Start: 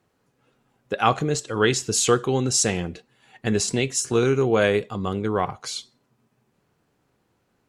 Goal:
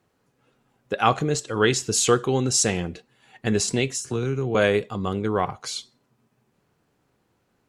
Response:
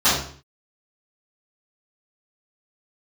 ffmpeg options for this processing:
-filter_complex "[0:a]asettb=1/sr,asplit=3[a][b][c];[a]atrim=end=3.954[d];[b]atrim=start=3.95:end=4.55,asetpts=PTS-STARTPTS,afade=t=in:d=0.004:c=qsin,afade=t=out:st=0.596:d=0.004:c=qsin,acrossover=split=200[e][f];[f]acompressor=threshold=-28dB:ratio=4[g];[e][g]amix=inputs=2:normalize=0[h];[c]atrim=start=4.546[i];[d][h]acrossfade=d=0.004:c1=hsin:c2=qsin[j];[j][i]acrossfade=d=0.004:c1=qsin:c2=hsin"

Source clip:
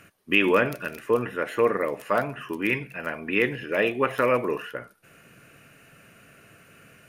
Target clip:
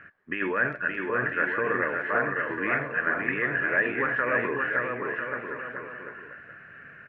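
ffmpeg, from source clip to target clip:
-af "alimiter=limit=-18dB:level=0:latency=1:release=23,lowpass=f=1.7k:t=q:w=6.7,aecho=1:1:570|997.5|1318|1559|1739:0.631|0.398|0.251|0.158|0.1,volume=-4dB"

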